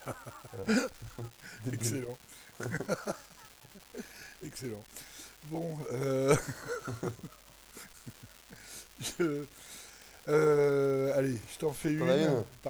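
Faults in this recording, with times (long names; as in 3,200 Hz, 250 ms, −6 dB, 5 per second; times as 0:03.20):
surface crackle 500 per second −41 dBFS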